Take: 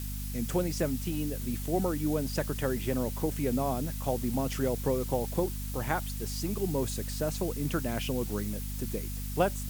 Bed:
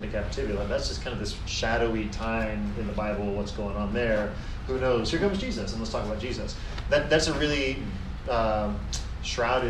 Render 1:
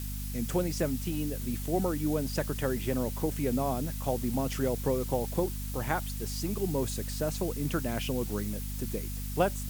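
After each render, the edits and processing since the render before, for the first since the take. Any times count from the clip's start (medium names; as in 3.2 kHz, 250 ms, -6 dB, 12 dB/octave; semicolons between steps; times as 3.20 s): no audible change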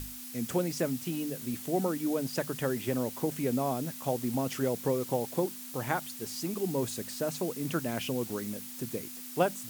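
hum notches 50/100/150/200 Hz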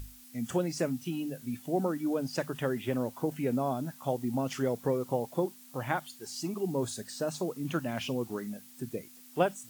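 noise print and reduce 10 dB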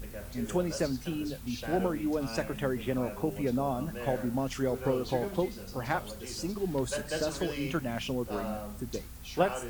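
add bed -12.5 dB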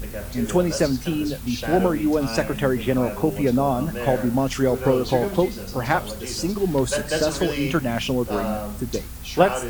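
trim +10 dB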